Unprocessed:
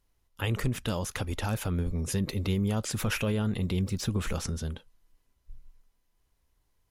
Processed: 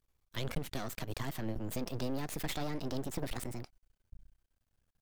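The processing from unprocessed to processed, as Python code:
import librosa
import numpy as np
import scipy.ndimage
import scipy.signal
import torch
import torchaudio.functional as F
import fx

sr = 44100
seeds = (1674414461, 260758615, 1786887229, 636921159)

y = fx.speed_glide(x, sr, from_pct=113, to_pct=162)
y = np.maximum(y, 0.0)
y = y * 10.0 ** (-3.5 / 20.0)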